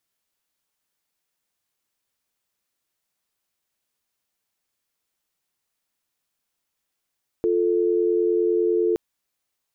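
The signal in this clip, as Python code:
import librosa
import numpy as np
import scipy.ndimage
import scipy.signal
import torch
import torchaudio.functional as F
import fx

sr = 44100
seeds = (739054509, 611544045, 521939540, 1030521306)

y = fx.call_progress(sr, length_s=1.52, kind='dial tone', level_db=-20.5)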